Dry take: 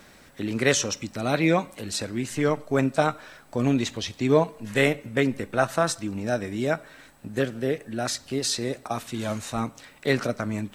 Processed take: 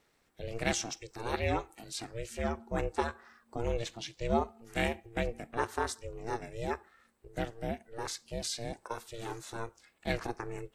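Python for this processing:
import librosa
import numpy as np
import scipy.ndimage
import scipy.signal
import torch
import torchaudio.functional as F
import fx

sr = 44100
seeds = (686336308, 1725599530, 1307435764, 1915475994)

y = fx.noise_reduce_blind(x, sr, reduce_db=10)
y = y * np.sin(2.0 * np.pi * 230.0 * np.arange(len(y)) / sr)
y = y * 10.0 ** (-7.0 / 20.0)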